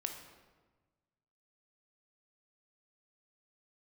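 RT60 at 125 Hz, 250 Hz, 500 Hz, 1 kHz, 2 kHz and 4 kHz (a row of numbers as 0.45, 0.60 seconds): 1.9, 1.5, 1.3, 1.3, 1.1, 0.90 seconds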